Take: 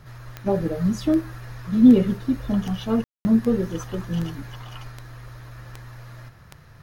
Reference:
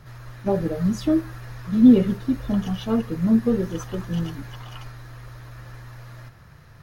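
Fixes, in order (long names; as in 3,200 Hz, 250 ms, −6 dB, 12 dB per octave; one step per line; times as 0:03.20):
click removal
ambience match 0:03.04–0:03.25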